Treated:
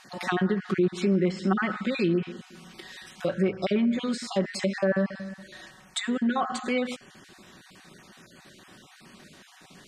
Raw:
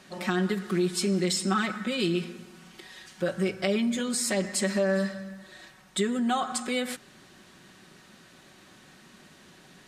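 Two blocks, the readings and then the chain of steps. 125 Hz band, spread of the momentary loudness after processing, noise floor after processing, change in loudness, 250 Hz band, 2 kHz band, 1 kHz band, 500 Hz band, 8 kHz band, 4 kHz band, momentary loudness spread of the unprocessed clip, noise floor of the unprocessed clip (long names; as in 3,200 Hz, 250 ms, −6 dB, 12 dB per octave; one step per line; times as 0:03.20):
+2.0 dB, 18 LU, −54 dBFS, +0.5 dB, +2.0 dB, +0.5 dB, +0.5 dB, +1.0 dB, −10.0 dB, −4.0 dB, 16 LU, −55 dBFS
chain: time-frequency cells dropped at random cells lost 22%
treble cut that deepens with the level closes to 1,800 Hz, closed at −23 dBFS
level +3 dB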